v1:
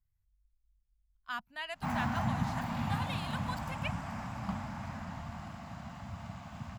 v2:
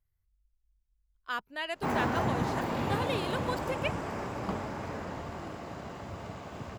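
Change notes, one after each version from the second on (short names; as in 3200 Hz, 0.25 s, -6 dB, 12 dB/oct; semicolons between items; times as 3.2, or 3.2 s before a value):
master: remove EQ curve 230 Hz 0 dB, 410 Hz -29 dB, 710 Hz -4 dB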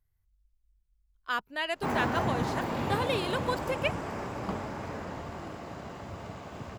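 speech +3.5 dB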